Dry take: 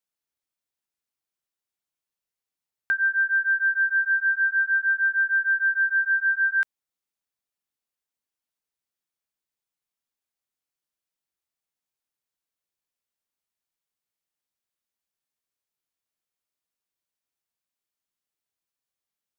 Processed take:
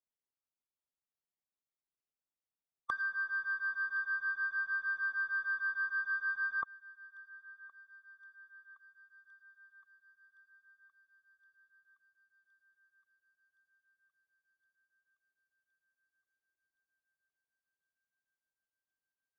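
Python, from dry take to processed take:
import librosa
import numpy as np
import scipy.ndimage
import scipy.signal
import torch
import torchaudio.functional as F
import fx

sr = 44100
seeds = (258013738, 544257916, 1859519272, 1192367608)

y = scipy.ndimage.median_filter(x, 15, mode='constant')
y = fx.formant_shift(y, sr, semitones=-5)
y = fx.env_lowpass_down(y, sr, base_hz=1500.0, full_db=-23.5)
y = fx.echo_thinned(y, sr, ms=1067, feedback_pct=80, hz=1200.0, wet_db=-21.0)
y = y * librosa.db_to_amplitude(-8.0)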